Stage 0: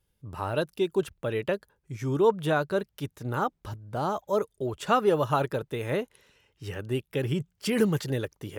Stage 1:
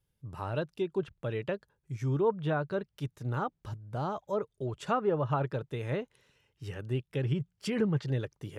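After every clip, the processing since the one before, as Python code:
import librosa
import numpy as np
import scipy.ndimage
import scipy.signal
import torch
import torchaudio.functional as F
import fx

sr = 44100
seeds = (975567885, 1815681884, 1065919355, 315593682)

y = fx.env_lowpass_down(x, sr, base_hz=1800.0, full_db=-19.5)
y = fx.peak_eq(y, sr, hz=130.0, db=7.0, octaves=0.73)
y = F.gain(torch.from_numpy(y), -6.0).numpy()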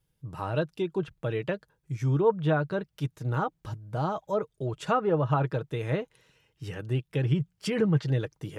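y = x + 0.34 * np.pad(x, (int(6.3 * sr / 1000.0), 0))[:len(x)]
y = F.gain(torch.from_numpy(y), 3.5).numpy()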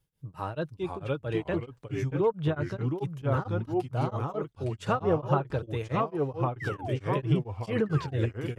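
y = fx.spec_paint(x, sr, seeds[0], shape='fall', start_s=6.6, length_s=0.38, low_hz=440.0, high_hz=2100.0, level_db=-36.0)
y = fx.echo_pitch(y, sr, ms=452, semitones=-2, count=2, db_per_echo=-3.0)
y = y * np.abs(np.cos(np.pi * 4.5 * np.arange(len(y)) / sr))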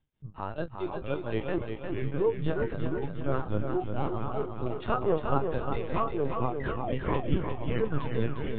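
y = fx.doubler(x, sr, ms=29.0, db=-9.5)
y = fx.lpc_vocoder(y, sr, seeds[1], excitation='pitch_kept', order=16)
y = fx.echo_feedback(y, sr, ms=354, feedback_pct=47, wet_db=-6.0)
y = F.gain(torch.from_numpy(y), -1.5).numpy()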